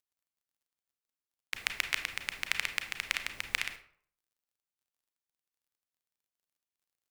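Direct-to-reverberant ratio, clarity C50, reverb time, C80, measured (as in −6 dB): 7.0 dB, 10.0 dB, 0.55 s, 14.0 dB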